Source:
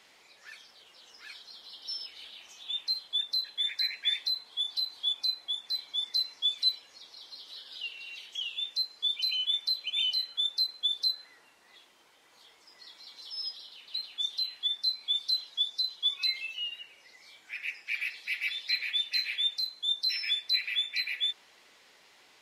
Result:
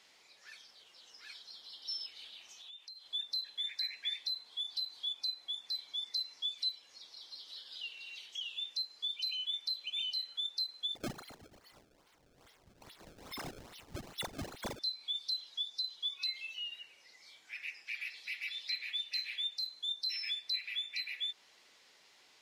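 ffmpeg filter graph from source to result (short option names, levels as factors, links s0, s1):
-filter_complex "[0:a]asettb=1/sr,asplit=3[s0][s1][s2];[s0]atrim=end=2.624[s3];[s1]atrim=start=2.62:end=3.06,asetpts=PTS-STARTPTS,afade=t=in:d=0.004:c=qsin,afade=t=out:st=0.436:d=0.004:c=qsin,agate=range=0.0224:threshold=0.00398:ratio=3:release=100:detection=peak,highpass=370,acompressor=threshold=0.00562:ratio=10:attack=3.2:release=140:knee=1:detection=peak[s4];[s2]atrim=start=3.056[s5];[s3][s4]acrossfade=d=0.004:c1=hsin:c2=qsin[s6];[s6][s5]acrossfade=d=0.004:c1=qsin:c2=hsin,asettb=1/sr,asplit=3[s7][s8][s9];[s7]atrim=end=10.954[s10];[s8]atrim=start=10.95:end=14.79,asetpts=PTS-STARTPTS,afade=t=in:d=0.004:c=qsin,afade=t=out:st=3.836:d=0.004:c=qsin,asplit=8[s11][s12][s13][s14][s15][s16][s17][s18];[s12]adelay=120,afreqshift=45,volume=0.168[s19];[s13]adelay=240,afreqshift=90,volume=0.106[s20];[s14]adelay=360,afreqshift=135,volume=0.0668[s21];[s15]adelay=480,afreqshift=180,volume=0.0422[s22];[s16]adelay=600,afreqshift=225,volume=0.0263[s23];[s17]adelay=720,afreqshift=270,volume=0.0166[s24];[s18]adelay=840,afreqshift=315,volume=0.0105[s25];[s11][s19][s20][s21][s22][s23][s24][s25]amix=inputs=8:normalize=0,atrim=end_sample=169344,acrusher=samples=26:mix=1:aa=0.000001:lfo=1:lforange=41.6:lforate=2.4[s26];[s9]atrim=start=14.786[s27];[s10][s26]acrossfade=d=0.004:c1=hsin:c2=qsin[s28];[s28][s27]acrossfade=d=0.004:c1=qsin:c2=hsin,acompressor=threshold=0.02:ratio=2,equalizer=f=5300:w=0.92:g=5,volume=0.473"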